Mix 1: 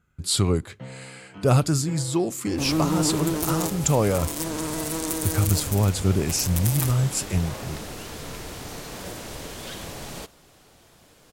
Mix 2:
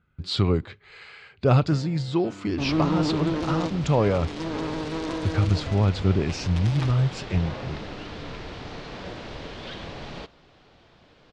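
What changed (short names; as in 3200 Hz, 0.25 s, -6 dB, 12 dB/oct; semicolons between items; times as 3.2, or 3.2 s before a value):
first sound: entry +0.90 s; master: add LPF 4300 Hz 24 dB/oct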